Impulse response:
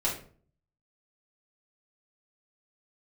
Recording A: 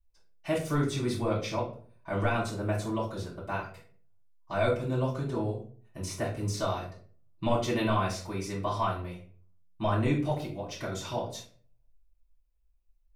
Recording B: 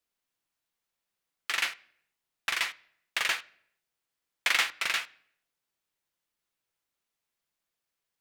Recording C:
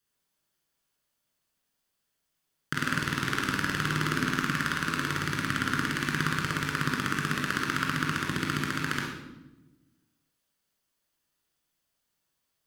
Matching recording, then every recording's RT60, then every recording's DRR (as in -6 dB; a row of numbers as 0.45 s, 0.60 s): A; 0.45 s, no single decay rate, 1.0 s; -7.0 dB, 12.0 dB, -3.0 dB